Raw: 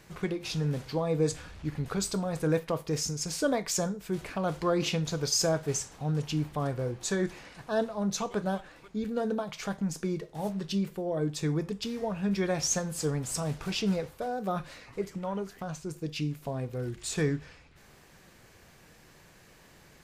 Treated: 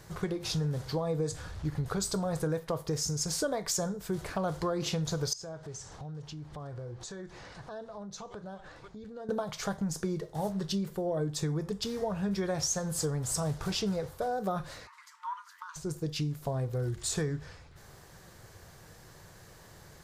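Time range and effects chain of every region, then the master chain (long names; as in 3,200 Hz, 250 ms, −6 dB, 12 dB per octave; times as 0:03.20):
0:05.33–0:09.29: low-pass filter 6,400 Hz + downward compressor 4 to 1, threshold −45 dBFS
0:14.87–0:15.76: linear-phase brick-wall high-pass 880 Hz + spectral tilt −3 dB per octave
whole clip: graphic EQ with 15 bands 100 Hz +6 dB, 250 Hz −7 dB, 2,500 Hz −9 dB; downward compressor, threshold −32 dBFS; level +4 dB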